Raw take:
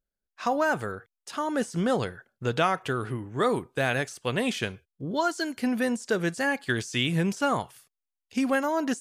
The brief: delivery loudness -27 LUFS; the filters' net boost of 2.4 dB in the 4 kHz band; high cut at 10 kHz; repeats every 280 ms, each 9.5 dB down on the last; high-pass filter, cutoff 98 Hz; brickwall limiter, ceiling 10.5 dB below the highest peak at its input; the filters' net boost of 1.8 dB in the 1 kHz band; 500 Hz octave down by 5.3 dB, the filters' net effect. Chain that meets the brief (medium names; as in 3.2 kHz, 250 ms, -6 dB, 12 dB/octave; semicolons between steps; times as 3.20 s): high-pass 98 Hz; low-pass 10 kHz; peaking EQ 500 Hz -8 dB; peaking EQ 1 kHz +4.5 dB; peaking EQ 4 kHz +3 dB; peak limiter -19.5 dBFS; feedback delay 280 ms, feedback 33%, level -9.5 dB; trim +3.5 dB